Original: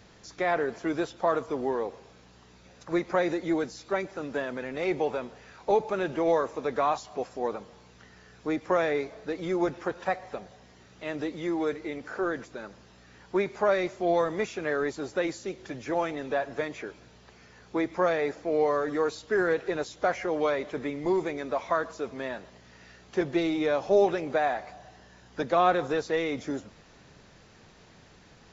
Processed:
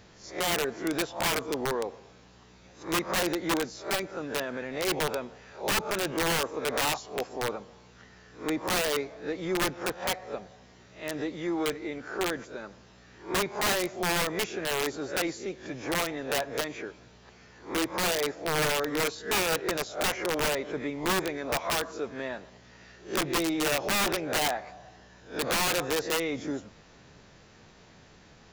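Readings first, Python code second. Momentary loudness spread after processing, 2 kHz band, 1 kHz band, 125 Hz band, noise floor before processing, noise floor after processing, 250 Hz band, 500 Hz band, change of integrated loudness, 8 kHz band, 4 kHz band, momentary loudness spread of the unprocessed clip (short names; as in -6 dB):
11 LU, +3.0 dB, -2.0 dB, +2.0 dB, -55 dBFS, -55 dBFS, -2.0 dB, -4.0 dB, -0.5 dB, n/a, +12.0 dB, 11 LU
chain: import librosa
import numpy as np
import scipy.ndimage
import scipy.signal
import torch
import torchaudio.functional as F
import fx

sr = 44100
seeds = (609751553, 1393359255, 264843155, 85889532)

y = fx.spec_swells(x, sr, rise_s=0.32)
y = (np.mod(10.0 ** (20.0 / 20.0) * y + 1.0, 2.0) - 1.0) / 10.0 ** (20.0 / 20.0)
y = y * librosa.db_to_amplitude(-1.0)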